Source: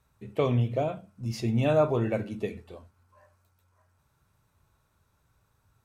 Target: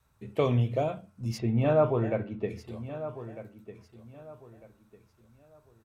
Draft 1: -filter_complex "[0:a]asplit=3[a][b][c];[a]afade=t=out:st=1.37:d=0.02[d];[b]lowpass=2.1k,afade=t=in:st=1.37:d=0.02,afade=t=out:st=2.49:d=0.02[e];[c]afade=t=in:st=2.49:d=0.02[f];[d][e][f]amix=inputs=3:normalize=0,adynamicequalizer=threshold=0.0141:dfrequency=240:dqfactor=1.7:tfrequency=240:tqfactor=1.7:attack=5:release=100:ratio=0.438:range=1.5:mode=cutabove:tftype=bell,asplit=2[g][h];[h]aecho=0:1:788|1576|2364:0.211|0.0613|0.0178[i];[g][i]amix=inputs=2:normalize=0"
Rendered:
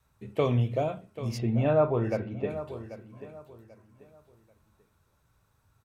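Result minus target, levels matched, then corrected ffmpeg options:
echo 0.462 s early
-filter_complex "[0:a]asplit=3[a][b][c];[a]afade=t=out:st=1.37:d=0.02[d];[b]lowpass=2.1k,afade=t=in:st=1.37:d=0.02,afade=t=out:st=2.49:d=0.02[e];[c]afade=t=in:st=2.49:d=0.02[f];[d][e][f]amix=inputs=3:normalize=0,adynamicequalizer=threshold=0.0141:dfrequency=240:dqfactor=1.7:tfrequency=240:tqfactor=1.7:attack=5:release=100:ratio=0.438:range=1.5:mode=cutabove:tftype=bell,asplit=2[g][h];[h]aecho=0:1:1250|2500|3750:0.211|0.0613|0.0178[i];[g][i]amix=inputs=2:normalize=0"

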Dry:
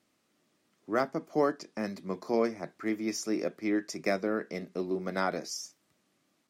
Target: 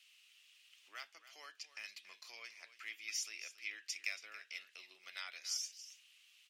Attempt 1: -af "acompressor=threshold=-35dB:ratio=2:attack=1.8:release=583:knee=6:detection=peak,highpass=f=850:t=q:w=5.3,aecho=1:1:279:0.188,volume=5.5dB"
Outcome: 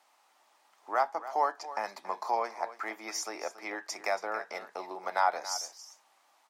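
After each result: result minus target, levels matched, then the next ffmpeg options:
1000 Hz band +18.5 dB; compressor: peak gain reduction -5.5 dB
-af "acompressor=threshold=-35dB:ratio=2:attack=1.8:release=583:knee=6:detection=peak,highpass=f=2.8k:t=q:w=5.3,aecho=1:1:279:0.188,volume=5.5dB"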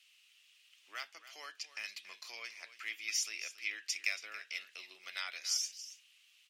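compressor: peak gain reduction -5.5 dB
-af "acompressor=threshold=-46.5dB:ratio=2:attack=1.8:release=583:knee=6:detection=peak,highpass=f=2.8k:t=q:w=5.3,aecho=1:1:279:0.188,volume=5.5dB"

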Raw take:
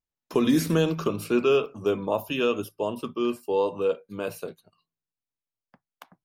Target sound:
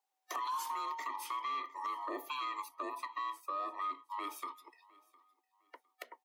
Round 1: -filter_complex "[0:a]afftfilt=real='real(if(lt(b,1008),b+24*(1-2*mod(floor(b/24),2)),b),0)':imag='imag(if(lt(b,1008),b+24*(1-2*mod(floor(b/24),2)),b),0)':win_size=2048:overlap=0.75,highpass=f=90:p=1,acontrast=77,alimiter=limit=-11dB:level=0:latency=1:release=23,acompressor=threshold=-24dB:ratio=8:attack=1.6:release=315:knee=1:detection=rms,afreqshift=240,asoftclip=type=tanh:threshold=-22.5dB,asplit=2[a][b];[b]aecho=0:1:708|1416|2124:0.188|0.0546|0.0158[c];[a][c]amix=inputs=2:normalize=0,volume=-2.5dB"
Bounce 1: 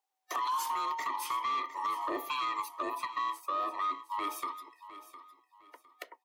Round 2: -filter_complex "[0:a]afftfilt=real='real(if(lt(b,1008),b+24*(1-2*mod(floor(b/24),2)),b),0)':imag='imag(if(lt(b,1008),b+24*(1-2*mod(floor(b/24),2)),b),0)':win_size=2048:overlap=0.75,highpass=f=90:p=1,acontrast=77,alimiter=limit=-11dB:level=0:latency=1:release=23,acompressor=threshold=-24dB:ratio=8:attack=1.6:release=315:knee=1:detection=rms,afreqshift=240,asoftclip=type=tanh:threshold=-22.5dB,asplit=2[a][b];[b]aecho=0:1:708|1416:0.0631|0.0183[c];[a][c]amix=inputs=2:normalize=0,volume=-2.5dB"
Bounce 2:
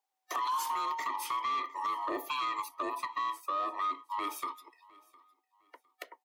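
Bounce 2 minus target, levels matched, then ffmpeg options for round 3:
compressor: peak gain reduction -6 dB
-filter_complex "[0:a]afftfilt=real='real(if(lt(b,1008),b+24*(1-2*mod(floor(b/24),2)),b),0)':imag='imag(if(lt(b,1008),b+24*(1-2*mod(floor(b/24),2)),b),0)':win_size=2048:overlap=0.75,highpass=f=90:p=1,acontrast=77,alimiter=limit=-11dB:level=0:latency=1:release=23,acompressor=threshold=-31dB:ratio=8:attack=1.6:release=315:knee=1:detection=rms,afreqshift=240,asoftclip=type=tanh:threshold=-22.5dB,asplit=2[a][b];[b]aecho=0:1:708|1416:0.0631|0.0183[c];[a][c]amix=inputs=2:normalize=0,volume=-2.5dB"

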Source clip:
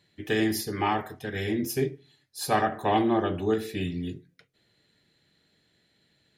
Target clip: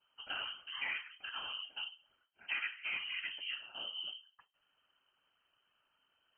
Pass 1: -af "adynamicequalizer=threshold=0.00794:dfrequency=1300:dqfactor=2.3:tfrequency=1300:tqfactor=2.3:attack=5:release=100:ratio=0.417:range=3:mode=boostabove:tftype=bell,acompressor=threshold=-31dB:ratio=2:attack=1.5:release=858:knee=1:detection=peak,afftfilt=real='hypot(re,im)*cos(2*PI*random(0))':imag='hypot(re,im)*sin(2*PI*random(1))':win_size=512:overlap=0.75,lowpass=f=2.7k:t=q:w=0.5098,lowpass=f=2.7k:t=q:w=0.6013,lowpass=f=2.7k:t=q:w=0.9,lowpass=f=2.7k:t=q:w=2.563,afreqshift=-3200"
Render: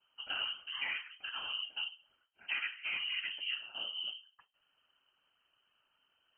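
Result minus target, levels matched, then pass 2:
250 Hz band -2.5 dB
-af "adynamicequalizer=threshold=0.00794:dfrequency=1300:dqfactor=2.3:tfrequency=1300:tqfactor=2.3:attack=5:release=100:ratio=0.417:range=3:mode=boostabove:tftype=bell,acompressor=threshold=-31dB:ratio=2:attack=1.5:release=858:knee=1:detection=peak,equalizer=f=310:w=1.4:g=-7,afftfilt=real='hypot(re,im)*cos(2*PI*random(0))':imag='hypot(re,im)*sin(2*PI*random(1))':win_size=512:overlap=0.75,lowpass=f=2.7k:t=q:w=0.5098,lowpass=f=2.7k:t=q:w=0.6013,lowpass=f=2.7k:t=q:w=0.9,lowpass=f=2.7k:t=q:w=2.563,afreqshift=-3200"

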